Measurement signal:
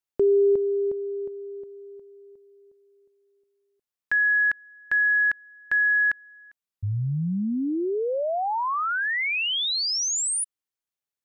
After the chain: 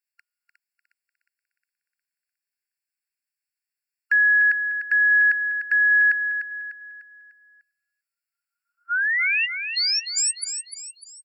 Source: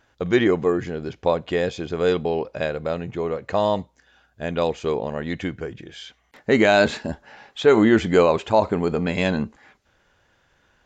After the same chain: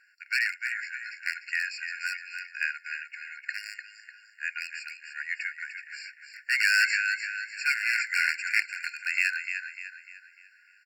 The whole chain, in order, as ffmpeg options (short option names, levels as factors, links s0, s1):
-af "aecho=1:1:299|598|897|1196|1495:0.398|0.167|0.0702|0.0295|0.0124,aeval=exprs='0.266*(abs(mod(val(0)/0.266+3,4)-2)-1)':c=same,afftfilt=real='re*eq(mod(floor(b*sr/1024/1400),2),1)':imag='im*eq(mod(floor(b*sr/1024/1400),2),1)':win_size=1024:overlap=0.75,volume=1.58"